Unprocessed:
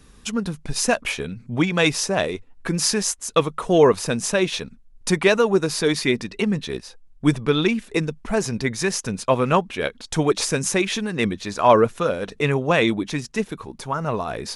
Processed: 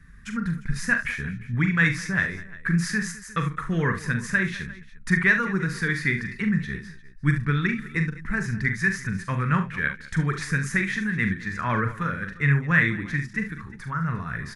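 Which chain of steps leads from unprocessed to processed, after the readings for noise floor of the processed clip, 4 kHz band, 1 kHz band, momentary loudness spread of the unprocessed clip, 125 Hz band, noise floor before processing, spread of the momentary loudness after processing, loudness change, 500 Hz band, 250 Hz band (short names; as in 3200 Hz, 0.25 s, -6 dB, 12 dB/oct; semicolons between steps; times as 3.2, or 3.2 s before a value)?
-44 dBFS, -13.5 dB, -7.5 dB, 11 LU, +2.5 dB, -50 dBFS, 10 LU, -3.5 dB, -16.5 dB, -3.5 dB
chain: EQ curve 170 Hz 0 dB, 290 Hz -13 dB, 690 Hz -25 dB, 1800 Hz +7 dB, 2800 Hz -16 dB; on a send: tapped delay 42/71/208/352 ms -7.5/-12/-18.5/-19.5 dB; on the sum: gain +1.5 dB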